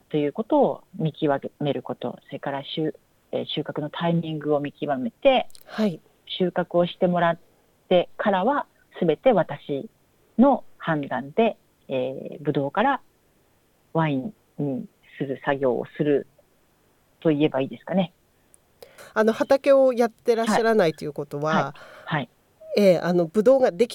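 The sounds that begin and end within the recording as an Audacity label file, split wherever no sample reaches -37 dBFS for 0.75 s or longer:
13.950000	16.220000	sound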